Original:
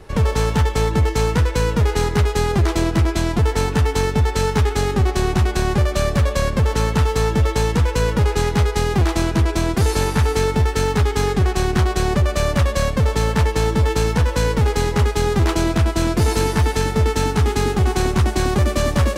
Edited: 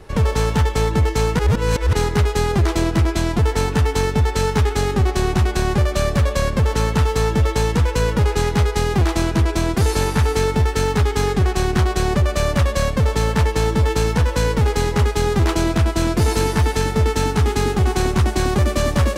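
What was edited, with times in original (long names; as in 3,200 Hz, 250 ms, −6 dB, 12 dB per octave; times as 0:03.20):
0:01.39–0:01.93: reverse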